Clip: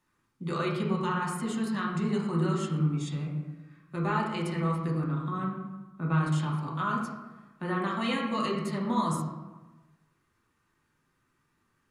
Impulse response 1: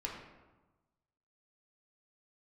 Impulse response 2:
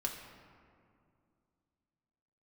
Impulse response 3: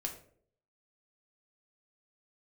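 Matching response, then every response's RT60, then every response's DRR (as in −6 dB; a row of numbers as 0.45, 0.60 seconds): 1; 1.2, 2.4, 0.60 seconds; −2.5, 0.0, 1.5 decibels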